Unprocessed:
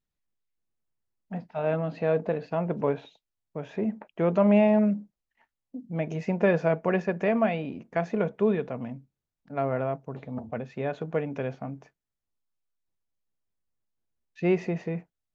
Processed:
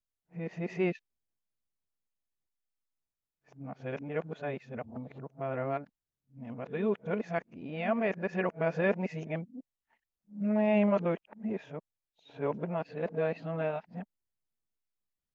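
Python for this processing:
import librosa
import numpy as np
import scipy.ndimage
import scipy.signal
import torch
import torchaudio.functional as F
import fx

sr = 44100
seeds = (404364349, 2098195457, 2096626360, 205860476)

y = x[::-1].copy()
y = fx.dynamic_eq(y, sr, hz=2200.0, q=0.71, threshold_db=-44.0, ratio=4.0, max_db=4)
y = y * 10.0 ** (-6.5 / 20.0)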